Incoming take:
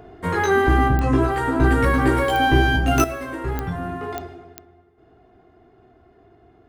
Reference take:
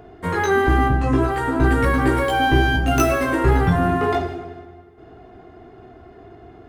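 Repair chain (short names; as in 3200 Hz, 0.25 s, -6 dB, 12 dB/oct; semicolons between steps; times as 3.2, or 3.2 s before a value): de-click; gain 0 dB, from 3.04 s +10 dB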